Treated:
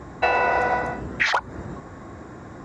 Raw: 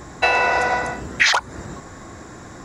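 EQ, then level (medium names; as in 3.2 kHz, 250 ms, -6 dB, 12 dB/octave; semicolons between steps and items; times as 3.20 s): high-pass 44 Hz; low-pass 1.3 kHz 6 dB/octave; 0.0 dB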